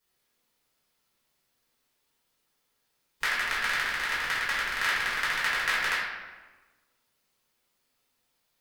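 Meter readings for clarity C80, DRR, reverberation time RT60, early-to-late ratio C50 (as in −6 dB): 2.5 dB, −10.0 dB, 1.3 s, 0.0 dB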